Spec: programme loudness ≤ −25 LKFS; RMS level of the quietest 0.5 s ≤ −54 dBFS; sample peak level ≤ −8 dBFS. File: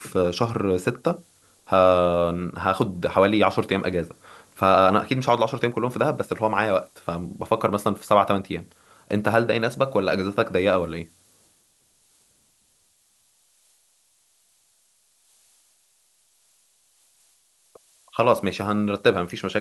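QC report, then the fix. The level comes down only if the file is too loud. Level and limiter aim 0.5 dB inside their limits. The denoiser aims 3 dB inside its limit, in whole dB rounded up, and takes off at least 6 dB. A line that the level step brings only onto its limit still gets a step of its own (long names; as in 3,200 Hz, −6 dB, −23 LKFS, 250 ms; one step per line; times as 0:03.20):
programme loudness −22.5 LKFS: out of spec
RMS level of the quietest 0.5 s −64 dBFS: in spec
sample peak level −3.5 dBFS: out of spec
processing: level −3 dB
brickwall limiter −8.5 dBFS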